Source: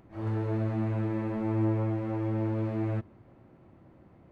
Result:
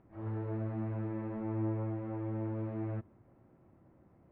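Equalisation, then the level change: LPF 2000 Hz 12 dB/oct; -7.0 dB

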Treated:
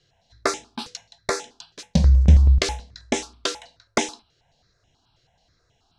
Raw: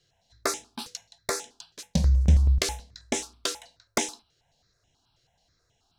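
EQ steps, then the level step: air absorption 76 m; +6.0 dB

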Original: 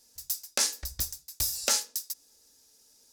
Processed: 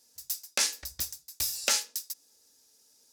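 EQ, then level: HPF 140 Hz 6 dB/oct; dynamic EQ 2500 Hz, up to +7 dB, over -46 dBFS, Q 1.1; -2.0 dB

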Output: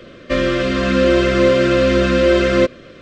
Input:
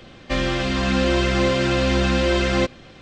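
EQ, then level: Butterworth band-stop 840 Hz, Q 1.7; bell 640 Hz +11.5 dB 2.9 oct; -1.5 dB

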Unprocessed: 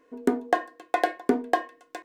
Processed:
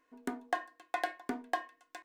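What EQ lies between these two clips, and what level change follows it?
bell 170 Hz -7 dB 2.6 oct; bell 460 Hz -11.5 dB 0.62 oct; -6.5 dB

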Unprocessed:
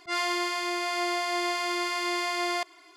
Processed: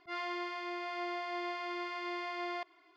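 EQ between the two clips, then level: air absorption 250 m; -8.0 dB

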